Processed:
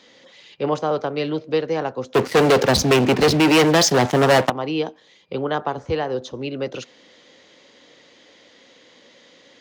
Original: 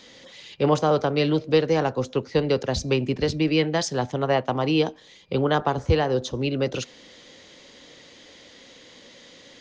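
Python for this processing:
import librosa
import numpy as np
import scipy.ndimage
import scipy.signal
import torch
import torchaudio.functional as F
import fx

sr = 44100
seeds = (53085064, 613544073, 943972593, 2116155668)

y = fx.high_shelf(x, sr, hz=3700.0, db=-7.0)
y = fx.leveller(y, sr, passes=5, at=(2.14, 4.5))
y = fx.highpass(y, sr, hz=260.0, slope=6)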